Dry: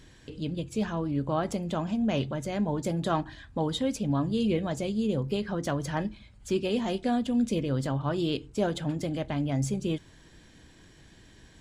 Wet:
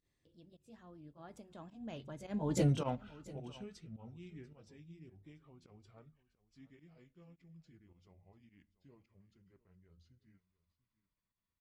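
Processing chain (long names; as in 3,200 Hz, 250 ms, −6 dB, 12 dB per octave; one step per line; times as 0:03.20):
pitch glide at a constant tempo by −7.5 semitones starting unshifted
source passing by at 0:02.63, 34 m/s, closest 2.3 metres
fake sidechain pumping 106 BPM, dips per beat 1, −17 dB, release 94 ms
on a send: single-tap delay 690 ms −19.5 dB
on the sum: level +4 dB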